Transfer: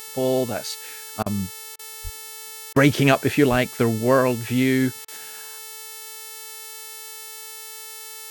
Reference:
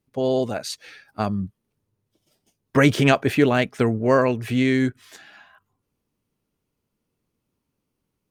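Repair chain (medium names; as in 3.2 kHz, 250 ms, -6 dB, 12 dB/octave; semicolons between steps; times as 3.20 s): de-hum 439.7 Hz, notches 39; 2.03–2.15 s: high-pass 140 Hz 24 dB/octave; 3.50–3.62 s: high-pass 140 Hz 24 dB/octave; interpolate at 1.23/1.76/2.73/5.05 s, 30 ms; expander -30 dBFS, range -21 dB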